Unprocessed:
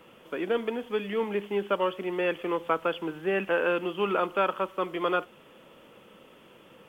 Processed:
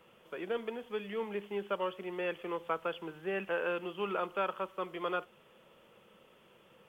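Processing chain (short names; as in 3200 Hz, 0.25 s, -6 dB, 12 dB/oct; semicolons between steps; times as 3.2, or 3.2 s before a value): bell 280 Hz -12.5 dB 0.24 oct; gain -7.5 dB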